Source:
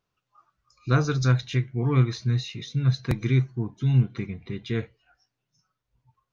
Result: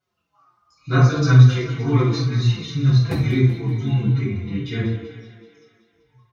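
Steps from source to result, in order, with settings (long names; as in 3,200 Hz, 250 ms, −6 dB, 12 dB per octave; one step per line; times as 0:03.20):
high-pass filter 69 Hz
on a send: feedback echo with a high-pass in the loop 191 ms, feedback 60%, high-pass 160 Hz, level −11 dB
on the sum: rectangular room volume 700 cubic metres, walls furnished, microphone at 7.5 metres
barber-pole flanger 4.9 ms −2.1 Hz
level −1.5 dB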